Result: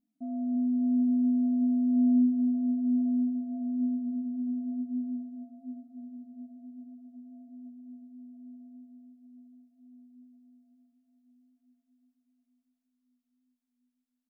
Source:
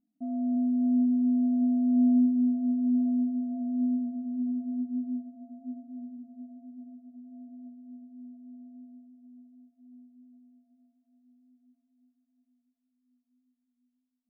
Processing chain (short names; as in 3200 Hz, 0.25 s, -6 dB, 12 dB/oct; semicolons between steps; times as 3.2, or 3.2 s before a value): resonator 220 Hz, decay 1.1 s; echo 0.23 s -10 dB; gain +5.5 dB